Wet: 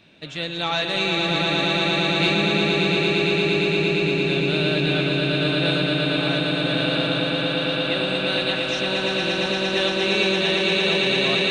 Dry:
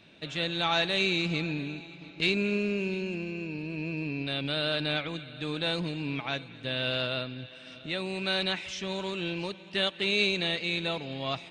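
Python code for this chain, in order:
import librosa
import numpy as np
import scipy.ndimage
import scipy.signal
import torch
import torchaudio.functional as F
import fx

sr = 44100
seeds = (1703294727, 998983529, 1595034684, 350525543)

y = fx.echo_swell(x, sr, ms=115, loudest=8, wet_db=-5.0)
y = F.gain(torch.from_numpy(y), 2.5).numpy()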